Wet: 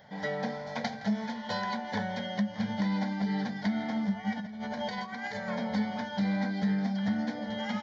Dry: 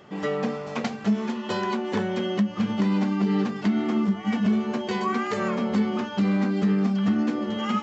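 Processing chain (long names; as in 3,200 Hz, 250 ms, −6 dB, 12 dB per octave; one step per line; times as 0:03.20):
low-shelf EQ 470 Hz −3 dB
0:04.32–0:05.48: compressor whose output falls as the input rises −32 dBFS, ratio −1
phaser with its sweep stopped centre 1,800 Hz, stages 8
single-tap delay 166 ms −18 dB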